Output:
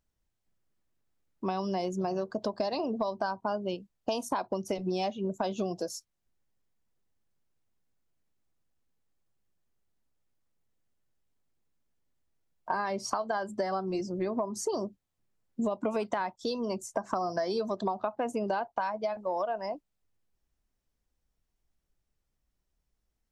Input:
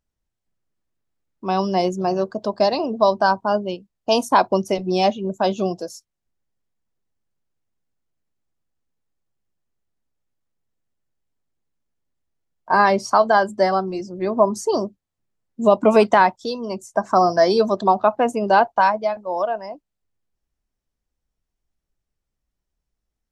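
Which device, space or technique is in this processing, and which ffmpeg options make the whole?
serial compression, peaks first: -af "acompressor=threshold=-23dB:ratio=6,acompressor=threshold=-31dB:ratio=2"

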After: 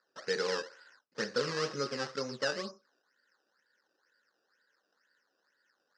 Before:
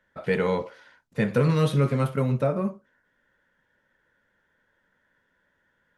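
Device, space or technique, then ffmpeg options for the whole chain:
circuit-bent sampling toy: -af "acrusher=samples=14:mix=1:aa=0.000001:lfo=1:lforange=14:lforate=2.1,highpass=470,equalizer=frequency=660:width_type=q:width=4:gain=-9,equalizer=frequency=940:width_type=q:width=4:gain=-7,equalizer=frequency=1600:width_type=q:width=4:gain=3,equalizer=frequency=2300:width_type=q:width=4:gain=-9,equalizer=frequency=3400:width_type=q:width=4:gain=-8,equalizer=frequency=5100:width_type=q:width=4:gain=9,lowpass=frequency=5700:width=0.5412,lowpass=frequency=5700:width=1.3066,volume=-3.5dB"

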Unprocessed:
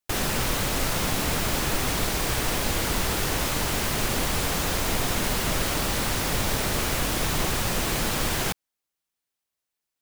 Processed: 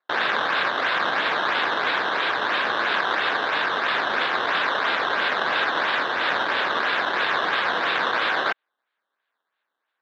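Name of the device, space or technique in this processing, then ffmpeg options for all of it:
circuit-bent sampling toy: -af "acrusher=samples=13:mix=1:aa=0.000001:lfo=1:lforange=13:lforate=3,highpass=500,equalizer=frequency=1100:width_type=q:width=4:gain=4,equalizer=frequency=1600:width_type=q:width=4:gain=9,equalizer=frequency=3700:width_type=q:width=4:gain=7,lowpass=frequency=4000:width=0.5412,lowpass=frequency=4000:width=1.3066,volume=3dB"

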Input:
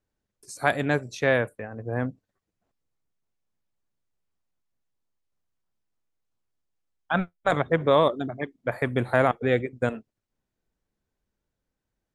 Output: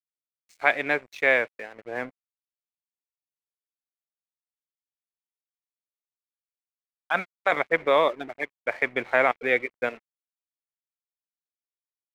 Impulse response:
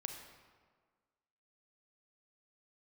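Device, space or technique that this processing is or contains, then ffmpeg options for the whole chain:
pocket radio on a weak battery: -af "highpass=390,lowpass=4300,aeval=exprs='sgn(val(0))*max(abs(val(0))-0.00398,0)':channel_layout=same,equalizer=frequency=2200:width_type=o:width=0.45:gain=12"

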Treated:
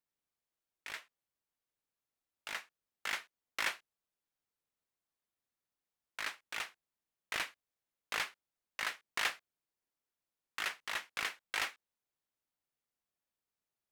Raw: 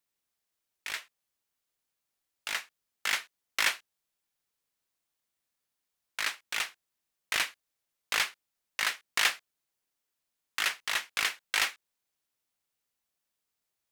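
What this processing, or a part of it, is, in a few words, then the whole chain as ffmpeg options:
behind a face mask: -af "highshelf=frequency=2000:gain=-8,volume=-3.5dB"

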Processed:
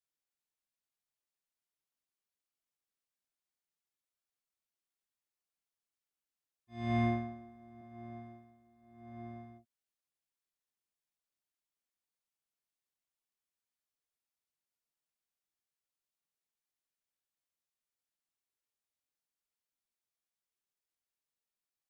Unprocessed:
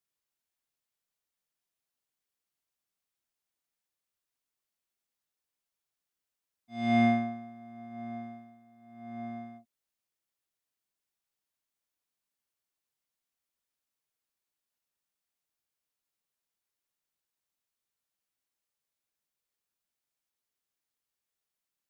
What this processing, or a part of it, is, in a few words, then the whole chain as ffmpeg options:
octave pedal: -filter_complex "[0:a]asettb=1/sr,asplit=3[link_01][link_02][link_03];[link_01]atrim=end=7.814[link_04];[link_02]atrim=start=7.81:end=9.48,asetpts=PTS-STARTPTS,afade=type=in:duration=0.004:curve=qsin,afade=type=out:start_time=1.666:duration=0.004:curve=qsin,adynamicequalizer=threshold=0.00112:dfrequency=120:dqfactor=1.2:tfrequency=120:tqfactor=1.2:attack=5:release=100:ratio=0.375:range=2.5:mode=cutabove:tftype=bell[link_05];[link_03]atrim=start=9.476[link_06];[link_04][link_05]acrossfade=duration=0.004:curve1=hsin:curve2=qsin[link_07];[link_07][link_06]acrossfade=duration=0.004:curve1=qsin:curve2=hsin,asplit=2[link_08][link_09];[link_09]asetrate=22050,aresample=44100,atempo=2,volume=-4dB[link_10];[link_08][link_10]amix=inputs=2:normalize=0,volume=-8.5dB"

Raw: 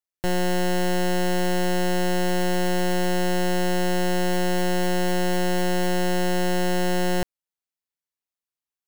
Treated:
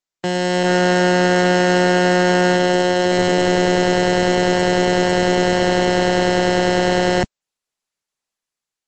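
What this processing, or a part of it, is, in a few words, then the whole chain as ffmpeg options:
video call: -filter_complex "[0:a]asettb=1/sr,asplit=3[link_01][link_02][link_03];[link_01]atrim=end=0.634[link_04];[link_02]atrim=start=0.63:end=2.57,asetpts=PTS-STARTPTS,afade=type=in:duration=0.004:curve=qsin,afade=type=out:start_time=1.936:duration=0.004:curve=qsin,adynamicequalizer=threshold=0.00447:dfrequency=1400:dqfactor=2.9:tfrequency=1400:tqfactor=2.9:attack=5:release=100:ratio=0.375:range=3:mode=boostabove:tftype=bell[link_05];[link_03]atrim=start=2.566[link_06];[link_04][link_05]acrossfade=duration=0.004:curve1=hsin:curve2=qsin[link_07];[link_07][link_06]acrossfade=duration=0.004:curve1=qsin:curve2=hsin,highpass=frequency=140:width=0.5412,highpass=frequency=140:width=1.3066,dynaudnorm=framelen=210:gausssize=5:maxgain=5dB,volume=4.5dB" -ar 48000 -c:a libopus -b:a 12k

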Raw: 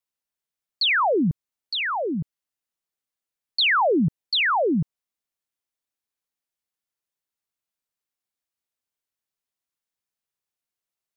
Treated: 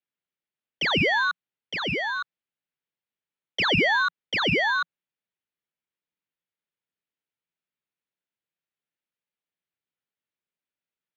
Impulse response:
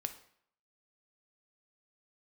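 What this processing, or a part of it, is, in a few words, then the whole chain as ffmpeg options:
ring modulator pedal into a guitar cabinet: -af "aeval=exprs='val(0)*sgn(sin(2*PI*1300*n/s))':channel_layout=same,highpass=95,equalizer=frequency=170:width_type=q:width=4:gain=5,equalizer=frequency=720:width_type=q:width=4:gain=-5,equalizer=frequency=1100:width_type=q:width=4:gain=-5,lowpass=frequency=3500:width=0.5412,lowpass=frequency=3500:width=1.3066"

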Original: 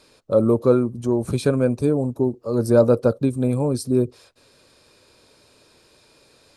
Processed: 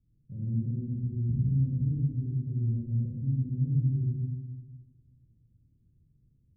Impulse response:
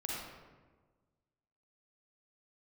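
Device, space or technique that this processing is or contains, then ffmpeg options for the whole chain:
club heard from the street: -filter_complex "[0:a]alimiter=limit=-14dB:level=0:latency=1:release=173,lowpass=frequency=160:width=0.5412,lowpass=frequency=160:width=1.3066[link_01];[1:a]atrim=start_sample=2205[link_02];[link_01][link_02]afir=irnorm=-1:irlink=0"

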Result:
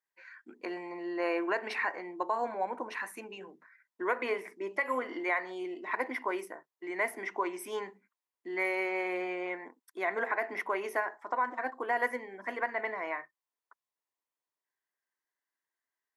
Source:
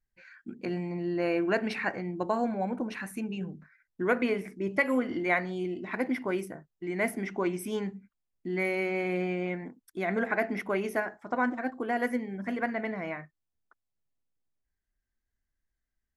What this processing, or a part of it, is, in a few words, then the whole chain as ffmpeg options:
laptop speaker: -af "highpass=frequency=340:width=0.5412,highpass=frequency=340:width=1.3066,equalizer=frequency=1000:width_type=o:width=0.43:gain=12,equalizer=frequency=1900:width_type=o:width=0.29:gain=6,alimiter=limit=-17.5dB:level=0:latency=1:release=162,volume=-2.5dB"

